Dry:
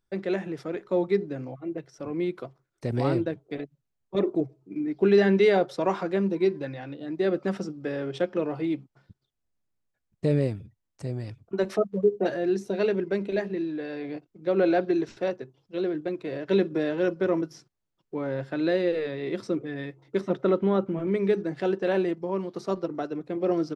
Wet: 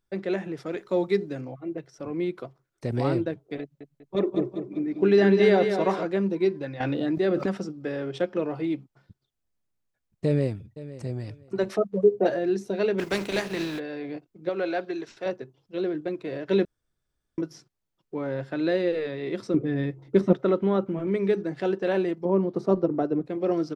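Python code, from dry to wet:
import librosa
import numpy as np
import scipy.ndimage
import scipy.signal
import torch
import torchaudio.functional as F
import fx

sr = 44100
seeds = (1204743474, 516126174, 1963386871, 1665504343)

y = fx.high_shelf(x, sr, hz=3200.0, db=9.5, at=(0.66, 1.41))
y = fx.echo_feedback(y, sr, ms=195, feedback_pct=44, wet_db=-7.0, at=(3.61, 6.05))
y = fx.env_flatten(y, sr, amount_pct=70, at=(6.8, 7.46))
y = fx.echo_throw(y, sr, start_s=10.25, length_s=0.92, ms=510, feedback_pct=20, wet_db=-16.0)
y = fx.peak_eq(y, sr, hz=600.0, db=5.0, octaves=1.3, at=(11.89, 12.39))
y = fx.spec_flatten(y, sr, power=0.56, at=(12.98, 13.78), fade=0.02)
y = fx.low_shelf(y, sr, hz=470.0, db=-12.0, at=(14.49, 15.26))
y = fx.low_shelf(y, sr, hz=430.0, db=11.5, at=(19.54, 20.33))
y = fx.tilt_shelf(y, sr, db=8.5, hz=1200.0, at=(22.25, 23.26))
y = fx.edit(y, sr, fx.room_tone_fill(start_s=16.65, length_s=0.73), tone=tone)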